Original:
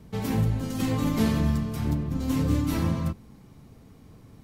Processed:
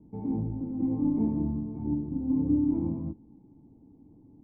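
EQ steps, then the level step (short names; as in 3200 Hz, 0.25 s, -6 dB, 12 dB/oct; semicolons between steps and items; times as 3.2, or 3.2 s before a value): vocal tract filter u; +4.5 dB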